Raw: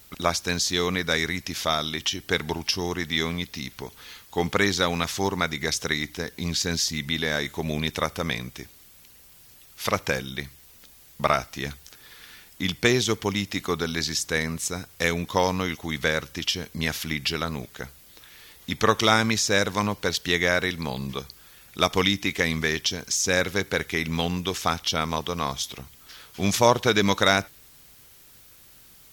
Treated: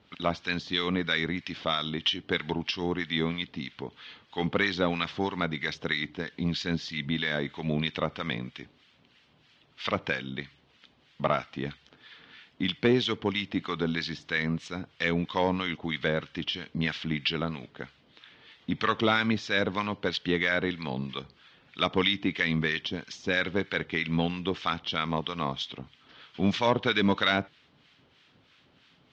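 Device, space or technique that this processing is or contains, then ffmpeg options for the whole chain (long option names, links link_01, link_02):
guitar amplifier with harmonic tremolo: -filter_complex "[0:a]acrossover=split=1100[link_01][link_02];[link_01]aeval=exprs='val(0)*(1-0.7/2+0.7/2*cos(2*PI*3.1*n/s))':channel_layout=same[link_03];[link_02]aeval=exprs='val(0)*(1-0.7/2-0.7/2*cos(2*PI*3.1*n/s))':channel_layout=same[link_04];[link_03][link_04]amix=inputs=2:normalize=0,asoftclip=type=tanh:threshold=-13.5dB,highpass=110,equalizer=frequency=160:width_type=q:width=4:gain=3,equalizer=frequency=260:width_type=q:width=4:gain=5,equalizer=frequency=3100:width_type=q:width=4:gain=4,lowpass=frequency=3800:width=0.5412,lowpass=frequency=3800:width=1.3066"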